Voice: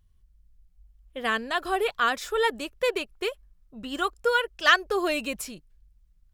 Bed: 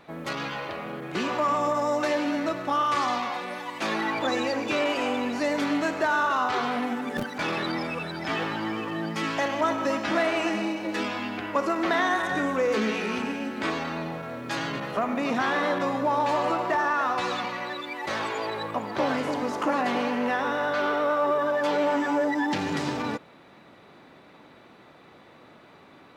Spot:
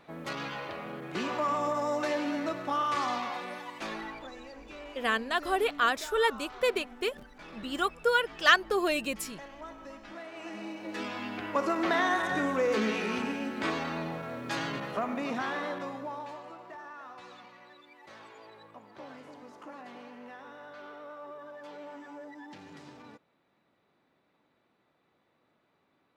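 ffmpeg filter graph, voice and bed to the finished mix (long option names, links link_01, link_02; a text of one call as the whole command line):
ffmpeg -i stem1.wav -i stem2.wav -filter_complex "[0:a]adelay=3800,volume=-2dB[link_01];[1:a]volume=12dB,afade=type=out:start_time=3.47:duration=0.84:silence=0.177828,afade=type=in:start_time=10.31:duration=1.35:silence=0.141254,afade=type=out:start_time=14.52:duration=1.91:silence=0.125893[link_02];[link_01][link_02]amix=inputs=2:normalize=0" out.wav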